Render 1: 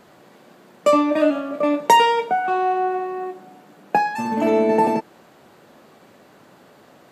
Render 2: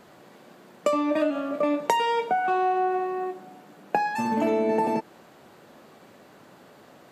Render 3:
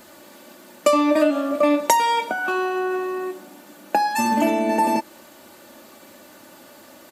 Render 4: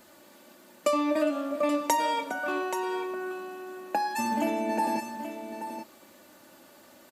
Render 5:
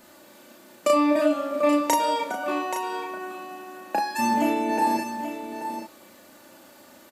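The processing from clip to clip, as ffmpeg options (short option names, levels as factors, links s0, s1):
-af "acompressor=threshold=0.126:ratio=12,volume=0.841"
-af "aecho=1:1:3.4:0.65,crystalizer=i=2.5:c=0,volume=1.26"
-af "aecho=1:1:408|829:0.112|0.335,volume=0.376"
-filter_complex "[0:a]asplit=2[s0][s1];[s1]adelay=34,volume=0.75[s2];[s0][s2]amix=inputs=2:normalize=0,volume=1.26"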